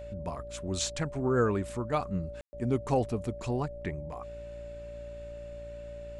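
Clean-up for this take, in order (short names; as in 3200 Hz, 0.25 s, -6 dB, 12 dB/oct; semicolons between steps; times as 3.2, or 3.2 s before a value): de-hum 57.7 Hz, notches 13; notch 580 Hz, Q 30; room tone fill 2.41–2.53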